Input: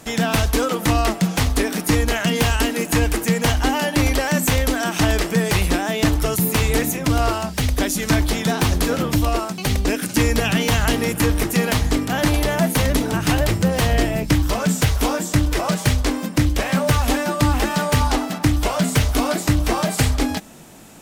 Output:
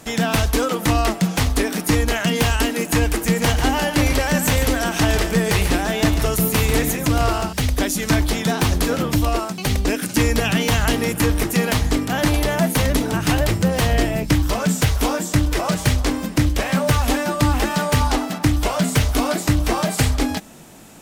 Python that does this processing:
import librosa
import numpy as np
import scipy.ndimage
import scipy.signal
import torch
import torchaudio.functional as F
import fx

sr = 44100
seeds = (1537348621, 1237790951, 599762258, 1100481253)

y = fx.echo_feedback(x, sr, ms=143, feedback_pct=16, wet_db=-8.5, at=(3.1, 7.53))
y = fx.echo_throw(y, sr, start_s=15.27, length_s=0.45, ms=380, feedback_pct=60, wet_db=-17.5)